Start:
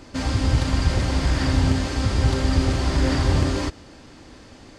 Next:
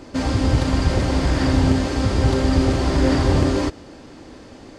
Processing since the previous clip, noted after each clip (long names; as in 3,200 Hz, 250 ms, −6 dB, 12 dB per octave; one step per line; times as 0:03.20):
parametric band 410 Hz +6.5 dB 2.5 octaves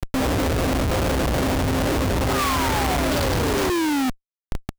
sound drawn into the spectrogram fall, 0:02.30–0:04.10, 250–1,300 Hz −23 dBFS
low-pass filter sweep 640 Hz → 6,600 Hz, 0:02.13–0:03.45
comparator with hysteresis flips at −30 dBFS
level −3.5 dB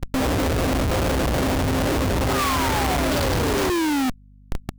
mains hum 50 Hz, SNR 27 dB